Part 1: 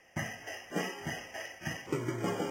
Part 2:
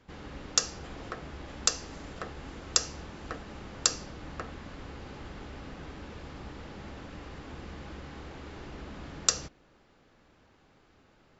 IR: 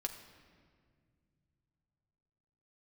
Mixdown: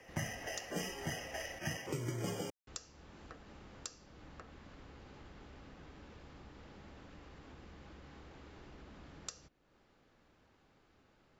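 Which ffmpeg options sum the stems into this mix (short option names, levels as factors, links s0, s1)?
-filter_complex "[0:a]equalizer=f=520:w=1.5:g=5.5,acontrast=32,volume=0.631[s0];[1:a]acompressor=threshold=0.00398:ratio=2,volume=0.473,asplit=3[s1][s2][s3];[s1]atrim=end=1.59,asetpts=PTS-STARTPTS,afade=t=out:st=1.586:d=0.004:c=hsin[s4];[s2]atrim=start=1.59:end=2.67,asetpts=PTS-STARTPTS,volume=0[s5];[s3]atrim=start=2.67,asetpts=PTS-STARTPTS,afade=t=in:d=0.004:c=hsin[s6];[s4][s5][s6]concat=n=3:v=0:a=1[s7];[s0][s7]amix=inputs=2:normalize=0,acrossover=split=160|3000[s8][s9][s10];[s9]acompressor=threshold=0.00891:ratio=6[s11];[s8][s11][s10]amix=inputs=3:normalize=0"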